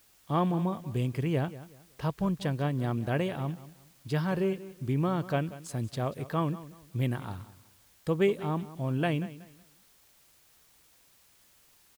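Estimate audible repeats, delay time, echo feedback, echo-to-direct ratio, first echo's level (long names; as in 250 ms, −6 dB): 2, 186 ms, 28%, −16.0 dB, −16.5 dB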